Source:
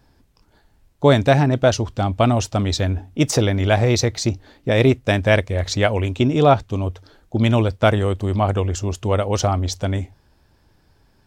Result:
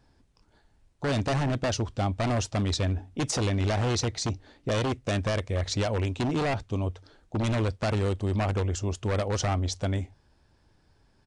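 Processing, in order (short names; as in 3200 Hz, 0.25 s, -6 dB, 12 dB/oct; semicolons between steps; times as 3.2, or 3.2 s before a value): limiter -9 dBFS, peak gain reduction 7 dB; wavefolder -15 dBFS; downsampling 22050 Hz; gain -6 dB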